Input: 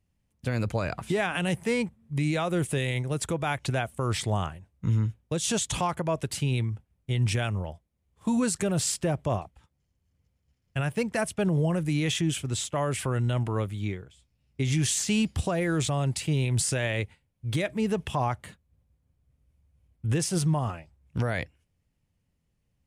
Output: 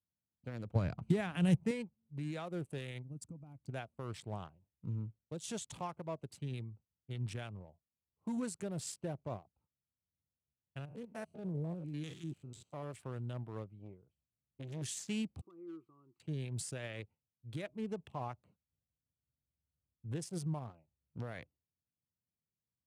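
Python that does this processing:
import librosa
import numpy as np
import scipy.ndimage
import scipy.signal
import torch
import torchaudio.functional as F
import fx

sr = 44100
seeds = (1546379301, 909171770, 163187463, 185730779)

y = fx.bass_treble(x, sr, bass_db=13, treble_db=1, at=(0.75, 1.71))
y = fx.spec_box(y, sr, start_s=3.03, length_s=0.66, low_hz=310.0, high_hz=4400.0, gain_db=-14)
y = fx.spec_steps(y, sr, hold_ms=100, at=(10.78, 12.92), fade=0.02)
y = fx.transformer_sat(y, sr, knee_hz=350.0, at=(13.79, 14.82))
y = fx.double_bandpass(y, sr, hz=640.0, octaves=1.8, at=(15.41, 16.2))
y = fx.wiener(y, sr, points=25)
y = scipy.signal.sosfilt(scipy.signal.butter(2, 100.0, 'highpass', fs=sr, output='sos'), y)
y = fx.upward_expand(y, sr, threshold_db=-40.0, expansion=1.5)
y = y * librosa.db_to_amplitude(-8.0)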